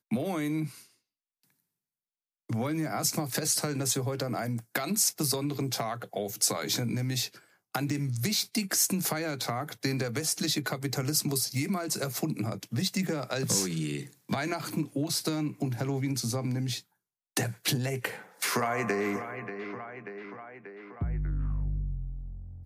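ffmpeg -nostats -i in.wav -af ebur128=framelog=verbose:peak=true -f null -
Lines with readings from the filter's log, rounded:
Integrated loudness:
  I:         -30.4 LUFS
  Threshold: -40.8 LUFS
Loudness range:
  LRA:         4.7 LU
  Threshold: -50.7 LUFS
  LRA low:   -33.7 LUFS
  LRA high:  -29.0 LUFS
True peak:
  Peak:      -12.0 dBFS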